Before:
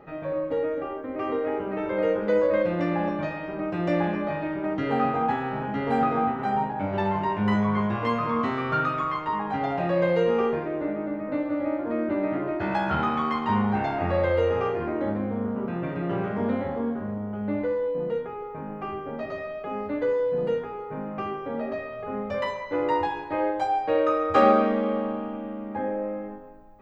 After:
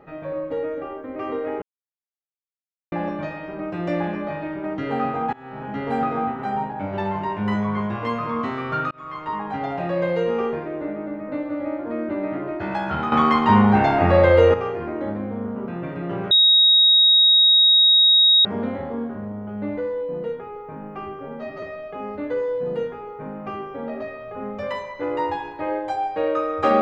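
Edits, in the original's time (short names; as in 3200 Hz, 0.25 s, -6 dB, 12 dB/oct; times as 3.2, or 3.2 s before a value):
1.62–2.92 mute
5.33–5.75 fade in, from -24 dB
8.91–9.3 fade in
13.12–14.54 gain +9 dB
16.31 add tone 3780 Hz -11 dBFS 2.14 s
19.05–19.34 stretch 1.5×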